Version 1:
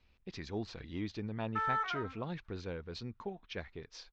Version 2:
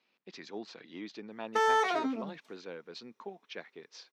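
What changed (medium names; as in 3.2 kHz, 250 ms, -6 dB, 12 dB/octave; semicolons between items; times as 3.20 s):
background: remove band-pass filter 1.4 kHz, Q 4.7; master: add Bessel high-pass 300 Hz, order 6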